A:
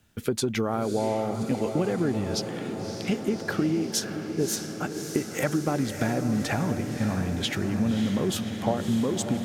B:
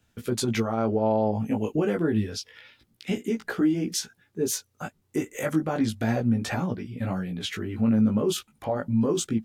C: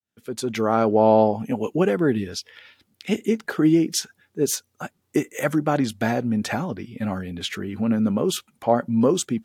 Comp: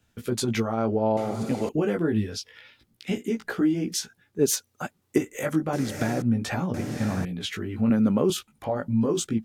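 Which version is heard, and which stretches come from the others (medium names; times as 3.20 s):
B
1.17–1.69 s: from A
4.39–5.18 s: from C
5.73–6.22 s: from A
6.74–7.25 s: from A
7.90–8.30 s: from C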